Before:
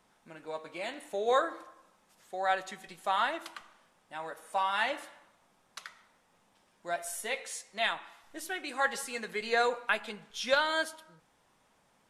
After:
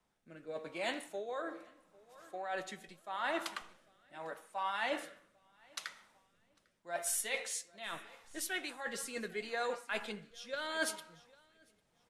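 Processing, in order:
reversed playback
downward compressor 12 to 1, threshold −36 dBFS, peak gain reduction 16 dB
reversed playback
repeating echo 799 ms, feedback 40%, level −18 dB
rotating-speaker cabinet horn 0.8 Hz
multiband upward and downward expander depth 40%
level +3.5 dB

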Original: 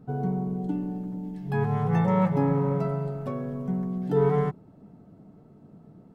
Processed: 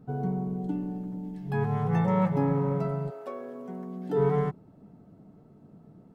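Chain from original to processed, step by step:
0:03.09–0:04.17: high-pass filter 400 Hz → 190 Hz 24 dB per octave
level −2 dB

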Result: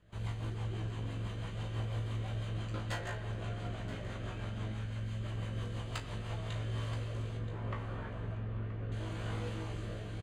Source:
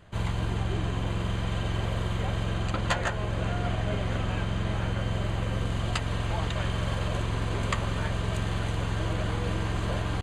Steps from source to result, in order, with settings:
wavefolder on the positive side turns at −19.5 dBFS
0:04.72–0:05.23: parametric band 490 Hz −8.5 dB 2.6 octaves
0:07.37–0:08.92: low-pass filter 1,800 Hz 12 dB per octave
tuned comb filter 54 Hz, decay 0.24 s, harmonics all, mix 100%
rotating-speaker cabinet horn 6 Hz, later 0.7 Hz, at 0:06.14
single-tap delay 977 ms −14 dB
convolution reverb RT60 2.0 s, pre-delay 68 ms, DRR 10 dB
level −3.5 dB

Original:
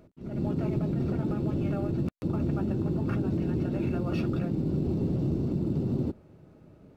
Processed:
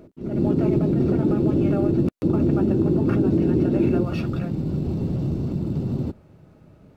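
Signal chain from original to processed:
parametric band 350 Hz +7 dB 1.4 octaves, from 0:04.05 −4.5 dB
level +5 dB

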